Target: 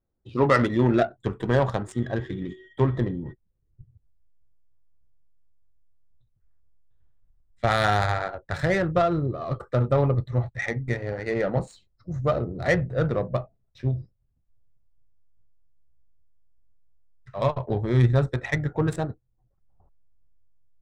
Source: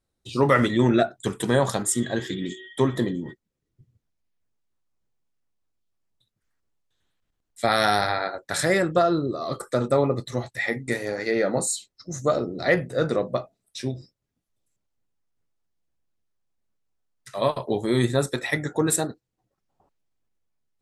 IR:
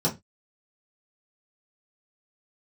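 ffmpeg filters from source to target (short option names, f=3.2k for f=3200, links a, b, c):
-af "asubboost=boost=8.5:cutoff=90,adynamicsmooth=sensitivity=1:basefreq=1.3k"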